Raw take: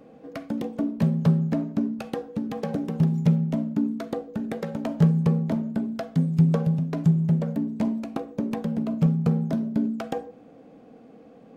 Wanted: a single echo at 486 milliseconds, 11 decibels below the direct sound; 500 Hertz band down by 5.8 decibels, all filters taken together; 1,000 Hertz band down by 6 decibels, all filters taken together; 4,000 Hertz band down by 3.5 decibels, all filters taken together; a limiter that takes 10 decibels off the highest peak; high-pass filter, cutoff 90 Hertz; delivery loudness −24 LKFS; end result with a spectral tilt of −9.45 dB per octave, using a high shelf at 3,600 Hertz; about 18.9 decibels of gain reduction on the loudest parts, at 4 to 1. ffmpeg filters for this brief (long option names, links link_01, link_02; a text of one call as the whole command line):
ffmpeg -i in.wav -af "highpass=90,equalizer=frequency=500:width_type=o:gain=-5.5,equalizer=frequency=1000:width_type=o:gain=-6,highshelf=frequency=3600:gain=4,equalizer=frequency=4000:width_type=o:gain=-7,acompressor=threshold=-39dB:ratio=4,alimiter=level_in=10.5dB:limit=-24dB:level=0:latency=1,volume=-10.5dB,aecho=1:1:486:0.282,volume=18dB" out.wav